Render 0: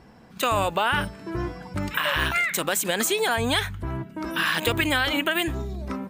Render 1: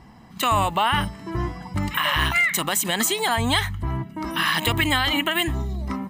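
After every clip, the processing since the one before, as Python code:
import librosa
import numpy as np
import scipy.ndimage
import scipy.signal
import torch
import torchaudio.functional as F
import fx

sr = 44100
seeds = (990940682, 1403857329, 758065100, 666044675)

y = x + 0.54 * np.pad(x, (int(1.0 * sr / 1000.0), 0))[:len(x)]
y = F.gain(torch.from_numpy(y), 1.5).numpy()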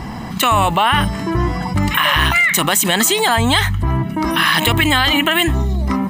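y = fx.env_flatten(x, sr, amount_pct=50)
y = F.gain(torch.from_numpy(y), 5.5).numpy()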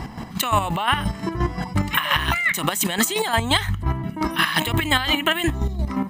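y = fx.chopper(x, sr, hz=5.7, depth_pct=60, duty_pct=35)
y = F.gain(torch.from_numpy(y), -3.0).numpy()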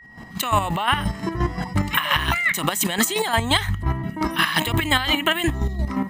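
y = fx.fade_in_head(x, sr, length_s=0.53)
y = y + 10.0 ** (-44.0 / 20.0) * np.sin(2.0 * np.pi * 1900.0 * np.arange(len(y)) / sr)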